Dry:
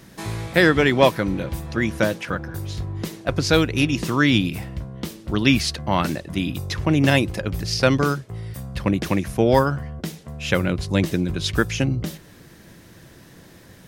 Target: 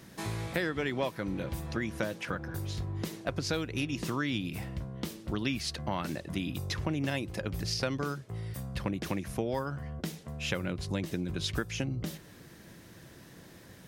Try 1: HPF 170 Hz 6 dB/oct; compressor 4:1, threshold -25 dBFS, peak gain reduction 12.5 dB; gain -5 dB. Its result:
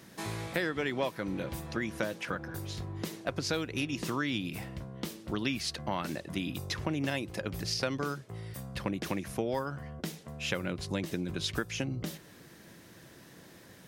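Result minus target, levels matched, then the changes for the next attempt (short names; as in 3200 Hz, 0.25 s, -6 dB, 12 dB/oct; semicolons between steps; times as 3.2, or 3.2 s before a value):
125 Hz band -2.5 dB
change: HPF 50 Hz 6 dB/oct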